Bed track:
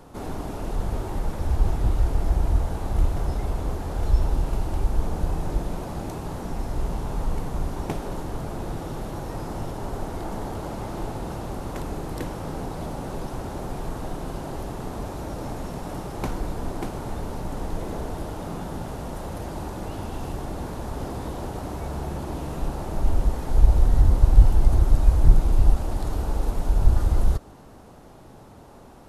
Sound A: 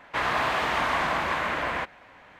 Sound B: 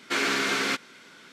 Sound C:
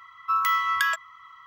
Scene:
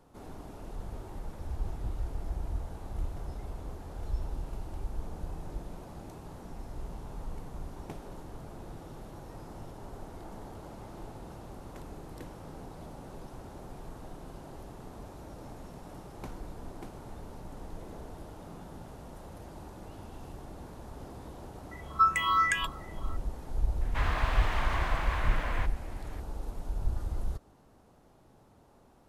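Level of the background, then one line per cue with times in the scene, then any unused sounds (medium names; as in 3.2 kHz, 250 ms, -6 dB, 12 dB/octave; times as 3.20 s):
bed track -13.5 dB
21.71 s: add C -7 dB + drifting ripple filter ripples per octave 0.55, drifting +2.7 Hz, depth 23 dB
23.81 s: add A -9.5 dB + companding laws mixed up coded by mu
not used: B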